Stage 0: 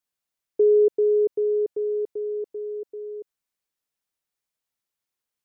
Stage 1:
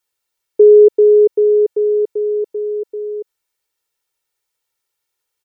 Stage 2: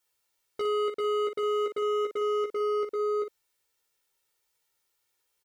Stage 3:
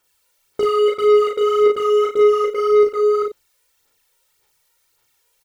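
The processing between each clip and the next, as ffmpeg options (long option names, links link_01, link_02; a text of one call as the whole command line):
ffmpeg -i in.wav -af "lowshelf=frequency=260:gain=-5,aecho=1:1:2.2:0.65,volume=8dB" out.wav
ffmpeg -i in.wav -af "acompressor=threshold=-18dB:ratio=5,volume=27dB,asoftclip=hard,volume=-27dB,aecho=1:1:15|58:0.668|0.422,volume=-2dB" out.wav
ffmpeg -i in.wav -filter_complex "[0:a]aphaser=in_gain=1:out_gain=1:delay=2.1:decay=0.62:speed=1.8:type=sinusoidal,asoftclip=type=tanh:threshold=-17.5dB,asplit=2[link_01][link_02];[link_02]adelay=36,volume=-3dB[link_03];[link_01][link_03]amix=inputs=2:normalize=0,volume=8dB" out.wav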